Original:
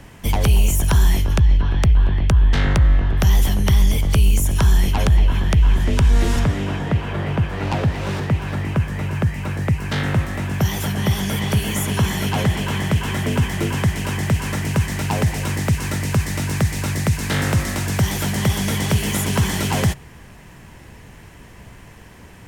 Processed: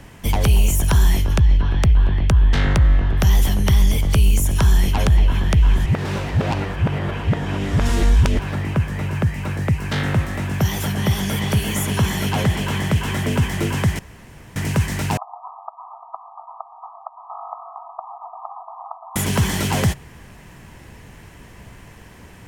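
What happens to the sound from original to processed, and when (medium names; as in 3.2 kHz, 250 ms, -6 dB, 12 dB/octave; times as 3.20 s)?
5.86–8.39 s: reverse
13.99–14.56 s: room tone
15.17–19.16 s: brick-wall FIR band-pass 650–1300 Hz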